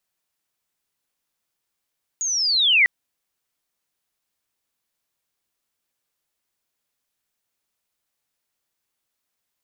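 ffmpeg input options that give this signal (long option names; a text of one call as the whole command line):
ffmpeg -f lavfi -i "aevalsrc='pow(10,(-22+10.5*t/0.65)/20)*sin(2*PI*(6800*t-4900*t*t/(2*0.65)))':duration=0.65:sample_rate=44100" out.wav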